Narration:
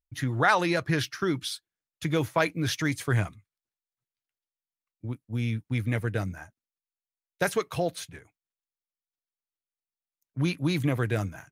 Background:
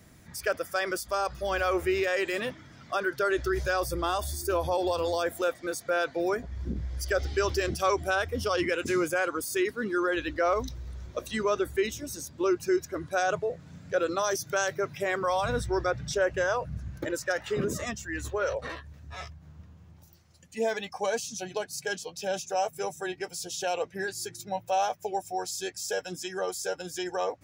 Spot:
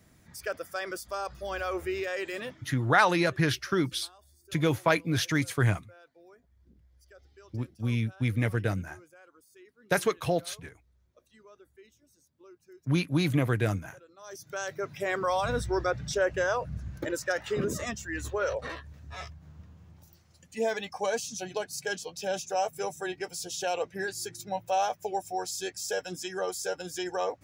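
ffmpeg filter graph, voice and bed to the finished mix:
ffmpeg -i stem1.wav -i stem2.wav -filter_complex "[0:a]adelay=2500,volume=0.5dB[link_01];[1:a]volume=22dB,afade=type=out:start_time=2.48:duration=0.45:silence=0.0749894,afade=type=in:start_time=14.17:duration=1.01:silence=0.0421697[link_02];[link_01][link_02]amix=inputs=2:normalize=0" out.wav

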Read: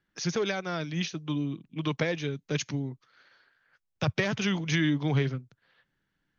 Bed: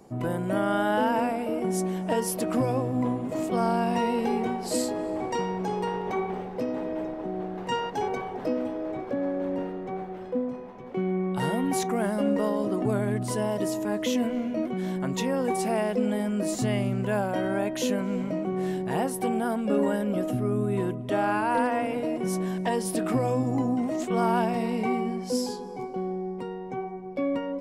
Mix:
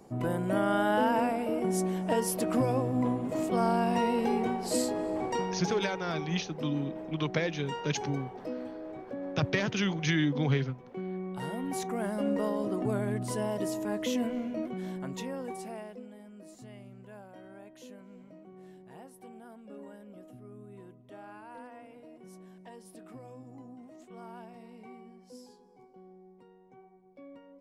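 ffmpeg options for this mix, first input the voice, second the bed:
ffmpeg -i stem1.wav -i stem2.wav -filter_complex "[0:a]adelay=5350,volume=-1.5dB[link_01];[1:a]volume=3dB,afade=type=out:start_time=5.26:duration=0.72:silence=0.421697,afade=type=in:start_time=11.49:duration=0.89:silence=0.562341,afade=type=out:start_time=14.27:duration=1.82:silence=0.125893[link_02];[link_01][link_02]amix=inputs=2:normalize=0" out.wav

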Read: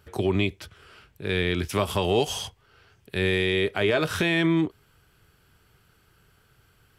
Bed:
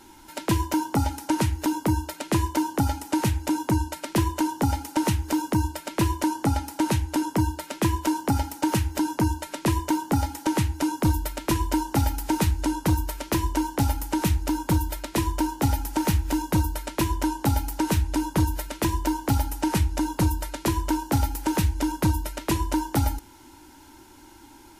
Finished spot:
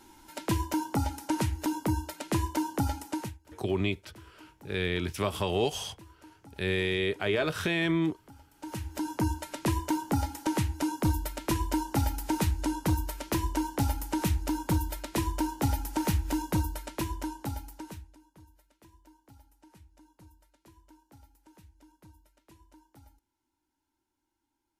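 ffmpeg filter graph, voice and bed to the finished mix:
ffmpeg -i stem1.wav -i stem2.wav -filter_complex "[0:a]adelay=3450,volume=-5dB[link_01];[1:a]volume=19dB,afade=type=out:start_time=3.01:duration=0.37:silence=0.0630957,afade=type=in:start_time=8.51:duration=0.77:silence=0.0595662,afade=type=out:start_time=16.42:duration=1.75:silence=0.0375837[link_02];[link_01][link_02]amix=inputs=2:normalize=0" out.wav

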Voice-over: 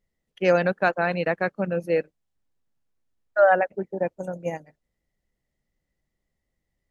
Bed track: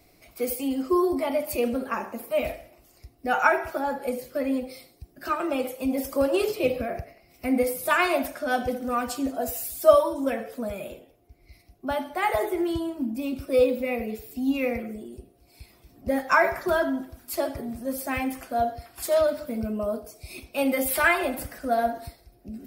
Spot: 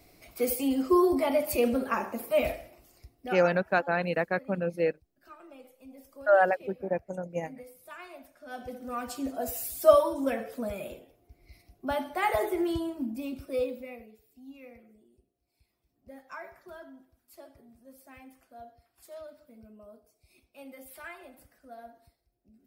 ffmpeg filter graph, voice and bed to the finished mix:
ffmpeg -i stem1.wav -i stem2.wav -filter_complex "[0:a]adelay=2900,volume=-4dB[link_01];[1:a]volume=21dB,afade=type=out:start_time=2.66:duration=0.86:silence=0.0668344,afade=type=in:start_time=8.35:duration=1.34:silence=0.0891251,afade=type=out:start_time=12.72:duration=1.4:silence=0.0944061[link_02];[link_01][link_02]amix=inputs=2:normalize=0" out.wav

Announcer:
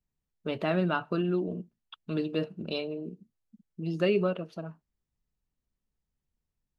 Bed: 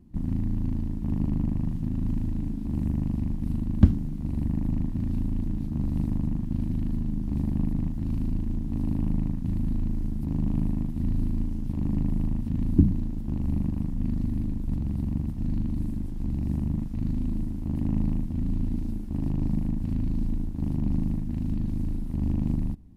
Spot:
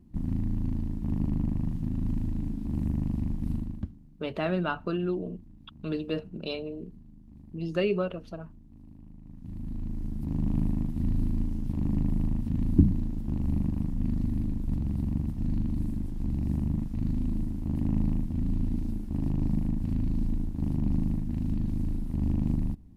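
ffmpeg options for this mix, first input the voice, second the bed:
ffmpeg -i stem1.wav -i stem2.wav -filter_complex "[0:a]adelay=3750,volume=-1dB[link_01];[1:a]volume=20dB,afade=type=out:start_time=3.53:duration=0.33:silence=0.0891251,afade=type=in:start_time=9.22:duration=1.34:silence=0.0794328[link_02];[link_01][link_02]amix=inputs=2:normalize=0" out.wav

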